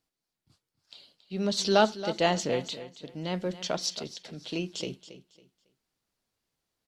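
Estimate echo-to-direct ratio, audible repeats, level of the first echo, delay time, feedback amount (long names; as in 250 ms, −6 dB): −13.5 dB, 2, −14.0 dB, 276 ms, 27%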